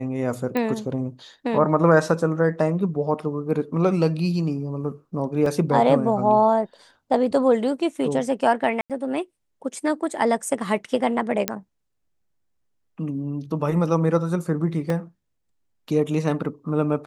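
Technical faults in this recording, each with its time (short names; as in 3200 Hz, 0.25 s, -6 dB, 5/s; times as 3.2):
0.57 pop -12 dBFS
5.46 gap 3 ms
8.81–8.9 gap 87 ms
11.48 pop -4 dBFS
14.9 gap 2.3 ms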